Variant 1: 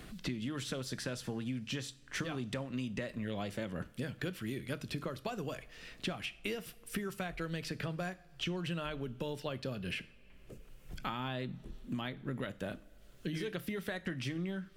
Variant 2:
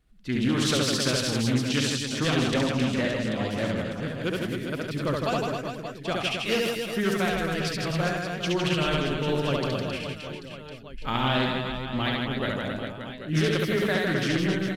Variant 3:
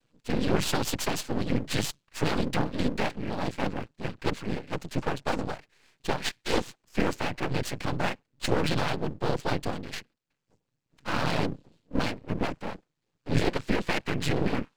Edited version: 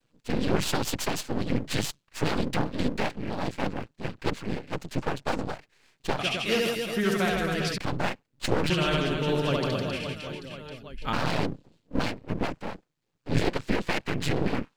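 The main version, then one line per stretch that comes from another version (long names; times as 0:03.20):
3
0:06.19–0:07.78: punch in from 2
0:08.70–0:11.13: punch in from 2
not used: 1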